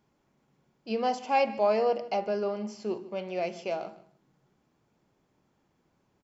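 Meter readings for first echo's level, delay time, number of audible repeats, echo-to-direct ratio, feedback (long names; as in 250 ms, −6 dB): −18.0 dB, 151 ms, 2, −18.0 dB, 17%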